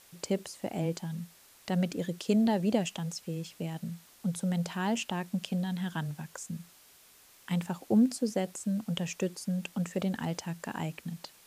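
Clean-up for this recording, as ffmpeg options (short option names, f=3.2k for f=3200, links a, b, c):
-af "afftdn=nr=18:nf=-59"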